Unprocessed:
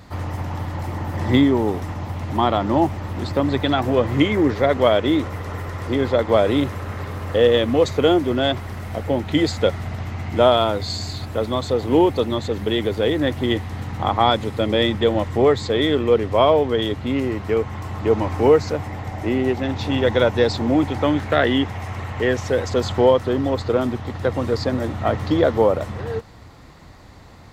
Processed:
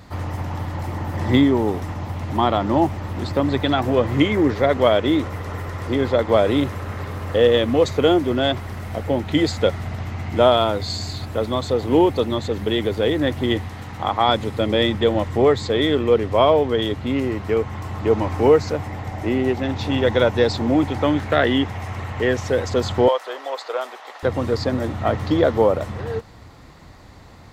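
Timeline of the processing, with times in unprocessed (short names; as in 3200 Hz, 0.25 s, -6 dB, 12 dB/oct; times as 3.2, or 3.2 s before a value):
13.69–14.29 low shelf 370 Hz -6.5 dB
23.08–24.23 HPF 580 Hz 24 dB/oct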